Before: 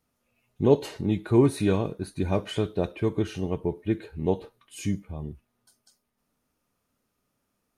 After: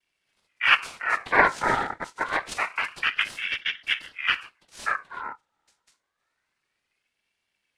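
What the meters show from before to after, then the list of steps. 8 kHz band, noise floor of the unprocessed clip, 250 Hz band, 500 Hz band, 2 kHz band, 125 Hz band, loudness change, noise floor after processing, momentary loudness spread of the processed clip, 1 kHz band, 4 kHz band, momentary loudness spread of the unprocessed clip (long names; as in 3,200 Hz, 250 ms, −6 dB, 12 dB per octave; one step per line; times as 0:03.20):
+1.5 dB, −78 dBFS, −15.5 dB, −9.0 dB, +21.0 dB, −19.0 dB, +2.0 dB, −80 dBFS, 11 LU, +11.5 dB, +12.5 dB, 11 LU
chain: cochlear-implant simulation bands 4
ring modulator whose carrier an LFO sweeps 1,800 Hz, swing 40%, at 0.27 Hz
level +3 dB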